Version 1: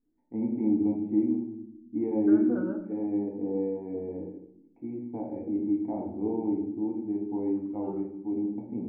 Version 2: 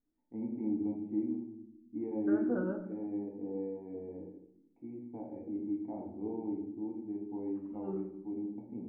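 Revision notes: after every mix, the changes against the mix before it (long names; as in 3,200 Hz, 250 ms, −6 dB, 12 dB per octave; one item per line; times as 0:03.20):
first voice −8.5 dB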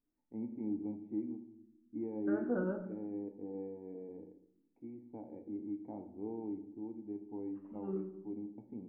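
first voice: send −9.5 dB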